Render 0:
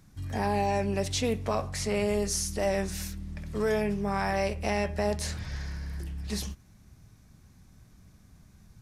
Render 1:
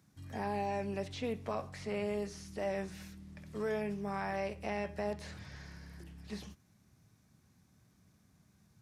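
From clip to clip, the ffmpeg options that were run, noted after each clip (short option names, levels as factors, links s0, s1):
-filter_complex "[0:a]highpass=110,acrossover=split=3700[s0][s1];[s1]acompressor=threshold=0.00282:ratio=4:attack=1:release=60[s2];[s0][s2]amix=inputs=2:normalize=0,volume=0.398"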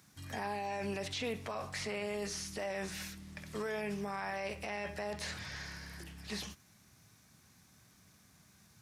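-af "tiltshelf=f=730:g=-5.5,alimiter=level_in=3.55:limit=0.0631:level=0:latency=1:release=24,volume=0.282,volume=1.88"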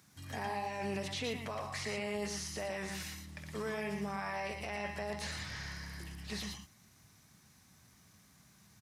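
-af "aecho=1:1:116|117:0.501|0.376,volume=0.891"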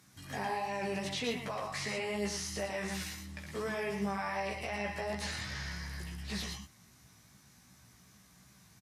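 -af "aresample=32000,aresample=44100,flanger=delay=15:depth=2.1:speed=2.7,volume=1.88"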